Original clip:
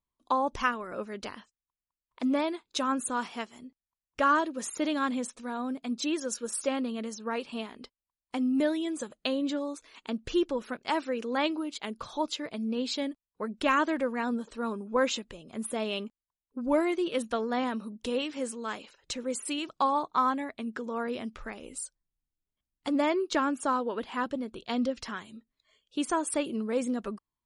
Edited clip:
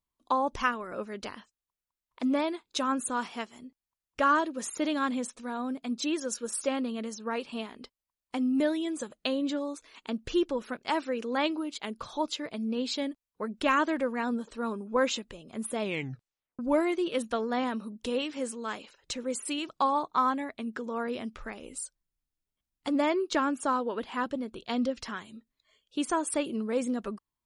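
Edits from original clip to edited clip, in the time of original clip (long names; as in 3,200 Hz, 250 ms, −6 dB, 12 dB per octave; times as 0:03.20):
0:15.81: tape stop 0.78 s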